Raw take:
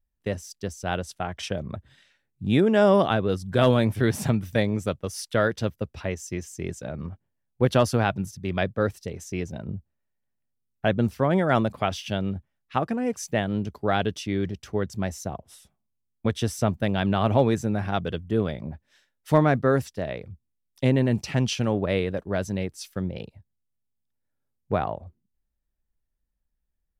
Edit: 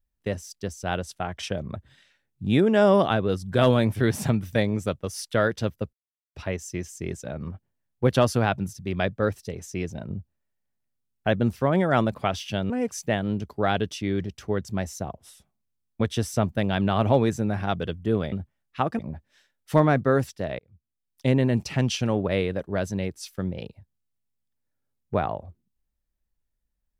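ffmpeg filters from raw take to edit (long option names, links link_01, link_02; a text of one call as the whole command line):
ffmpeg -i in.wav -filter_complex "[0:a]asplit=6[link_01][link_02][link_03][link_04][link_05][link_06];[link_01]atrim=end=5.93,asetpts=PTS-STARTPTS,afade=type=out:start_time=5.926:duration=0.004:curve=hsin,apad=pad_dur=0.42[link_07];[link_02]atrim=start=5.93:end=12.282,asetpts=PTS-STARTPTS,afade=type=in:duration=0.004:curve=hsin[link_08];[link_03]atrim=start=12.948:end=18.572[link_09];[link_04]atrim=start=12.278:end=12.952[link_10];[link_05]atrim=start=18.568:end=20.17,asetpts=PTS-STARTPTS,afade=type=out:start_time=1.598:duration=0.004:curve=hsin[link_11];[link_06]atrim=start=20.17,asetpts=PTS-STARTPTS,afade=type=in:duration=0.73[link_12];[link_07][link_08]concat=n=2:v=0:a=1[link_13];[link_13][link_09]acrossfade=duration=0.004:curve1=hsin:curve2=hsin[link_14];[link_14][link_10]acrossfade=duration=0.004:curve1=hsin:curve2=hsin[link_15];[link_11][link_12]concat=n=2:v=0:a=1[link_16];[link_15][link_16]acrossfade=duration=0.004:curve1=hsin:curve2=hsin" out.wav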